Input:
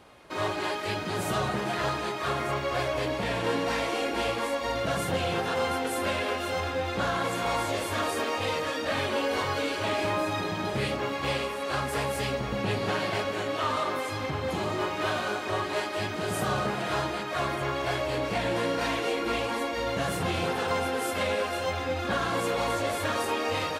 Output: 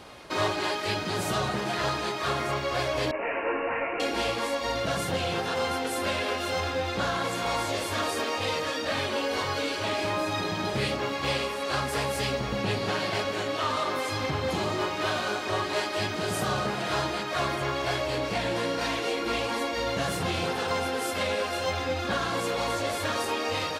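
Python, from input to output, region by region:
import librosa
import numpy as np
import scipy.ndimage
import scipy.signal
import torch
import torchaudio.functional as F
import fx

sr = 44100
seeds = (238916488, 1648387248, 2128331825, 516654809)

y = fx.chain(x, sr, fx.highpass(hz=300.0, slope=24),
    fx.resample_bad(factor=8, down='none', up='filtered'),
    fx.detune_double(cents=35), at=(3.11, 4.0))
y = fx.peak_eq(y, sr, hz=4900.0, db=5.0, octaves=1.1)
y = fx.rider(y, sr, range_db=10, speed_s=0.5)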